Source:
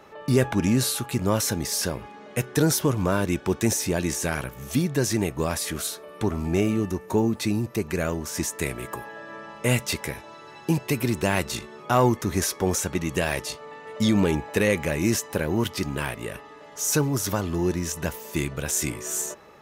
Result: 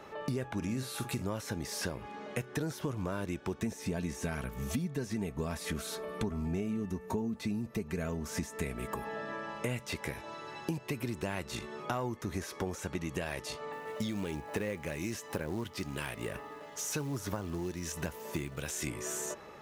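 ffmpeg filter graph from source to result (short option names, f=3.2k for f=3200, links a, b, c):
-filter_complex "[0:a]asettb=1/sr,asplit=3[a][b][c];[a]atrim=end=0.574[d];[b]atrim=start=0.57:end=1.25,asetpts=PTS-STARTPTS,afade=t=in:d=0.004:c=qsin,afade=t=out:st=0.676:d=0.004:c=qsin,highshelf=f=4.6k:g=6.5,bandreject=f=3k:w=21,asplit=2[e][f];[f]adelay=46,volume=-11.5dB[g];[e][g]amix=inputs=2:normalize=0,atrim=end_sample=29988[h];[c]atrim=start=1.246[i];[d][h]acrossfade=d=0.004:c1=hsin:c2=qsin[j];[j][i]acrossfade=d=0.004:c1=qsin:c2=hsin,asettb=1/sr,asplit=3[k][l][m];[k]atrim=end=3.594[n];[l]atrim=start=3.59:end=9.32,asetpts=PTS-STARTPTS,afade=t=in:d=0.004:c=qsin,afade=t=out:st=5.726:d=0.004:c=qsin,lowshelf=f=220:g=8.5,aecho=1:1:4.5:0.49,atrim=end_sample=252693[o];[m]atrim=start=9.316[p];[n][o]acrossfade=d=0.004:c1=hsin:c2=qsin[q];[q][p]acrossfade=d=0.004:c1=qsin:c2=hsin,asettb=1/sr,asplit=3[r][s][t];[r]atrim=end=13.724[u];[s]atrim=start=13.72:end=18.87,asetpts=PTS-STARTPTS,afade=t=in:d=0.004:c=qsin,afade=t=out:st=5.146:d=0.004:c=qsin,highpass=43,acrossover=split=2100[v][w];[v]aeval=exprs='val(0)*(1-0.5/2+0.5/2*cos(2*PI*1.1*n/s))':c=same[x];[w]aeval=exprs='val(0)*(1-0.5/2-0.5/2*cos(2*PI*1.1*n/s))':c=same[y];[x][y]amix=inputs=2:normalize=0,acrusher=bits=5:mode=log:mix=0:aa=0.000001[z];[t]atrim=start=18.866[aa];[u][z]acrossfade=d=0.004:c1=hsin:c2=qsin[ab];[ab][aa]acrossfade=d=0.004:c1=qsin:c2=hsin,acrossover=split=3100[ac][ad];[ad]acompressor=threshold=-32dB:ratio=4:attack=1:release=60[ae];[ac][ae]amix=inputs=2:normalize=0,highshelf=f=10k:g=-4.5,acompressor=threshold=-33dB:ratio=6"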